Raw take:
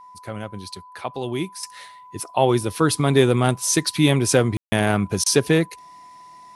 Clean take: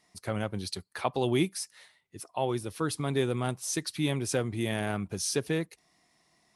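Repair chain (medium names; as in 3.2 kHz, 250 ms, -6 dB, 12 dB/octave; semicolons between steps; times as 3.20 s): band-stop 1 kHz, Q 30; room tone fill 4.57–4.72 s; interpolate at 5.24 s, 20 ms; gain correction -12 dB, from 1.63 s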